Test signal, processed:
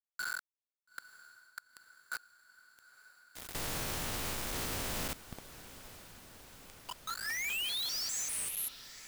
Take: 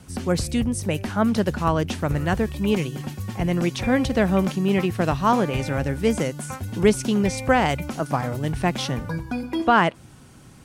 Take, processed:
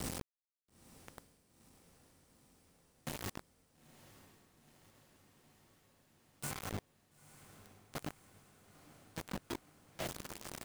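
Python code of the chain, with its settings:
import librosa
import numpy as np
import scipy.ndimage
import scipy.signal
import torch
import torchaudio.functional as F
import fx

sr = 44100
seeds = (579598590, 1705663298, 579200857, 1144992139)

p1 = fx.spec_steps(x, sr, hold_ms=200)
p2 = fx.gate_flip(p1, sr, shuts_db=-22.0, range_db=-35)
p3 = fx.hum_notches(p2, sr, base_hz=50, count=7)
p4 = fx.over_compress(p3, sr, threshold_db=-42.0, ratio=-1.0)
p5 = fx.quant_companded(p4, sr, bits=2)
p6 = p5 + fx.echo_diffused(p5, sr, ms=924, feedback_pct=72, wet_db=-16.0, dry=0)
y = F.gain(torch.from_numpy(p6), -8.0).numpy()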